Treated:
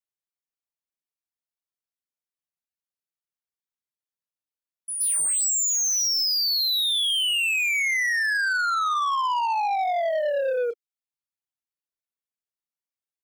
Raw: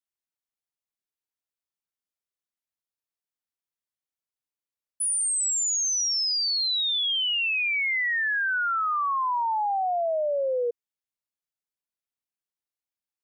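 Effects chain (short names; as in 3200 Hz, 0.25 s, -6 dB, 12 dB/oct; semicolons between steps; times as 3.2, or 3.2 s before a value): pre-echo 0.121 s -12 dB; reverb removal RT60 0.66 s; in parallel at -10 dB: overloaded stage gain 27 dB; on the sum: doubler 30 ms -14 dB; sample leveller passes 2; gain -2.5 dB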